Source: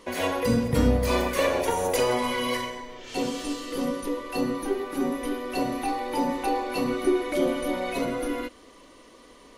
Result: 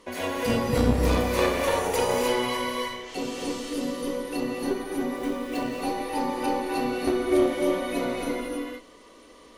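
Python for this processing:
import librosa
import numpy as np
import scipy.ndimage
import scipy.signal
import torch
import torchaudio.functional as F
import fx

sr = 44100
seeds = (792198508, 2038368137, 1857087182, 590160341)

y = fx.cheby_harmonics(x, sr, harmonics=(2, 8), levels_db=(-6, -29), full_scale_db=-9.0)
y = fx.rev_gated(y, sr, seeds[0], gate_ms=340, shape='rising', drr_db=-1.0)
y = fx.running_max(y, sr, window=3, at=(5.16, 5.82))
y = y * 10.0 ** (-3.5 / 20.0)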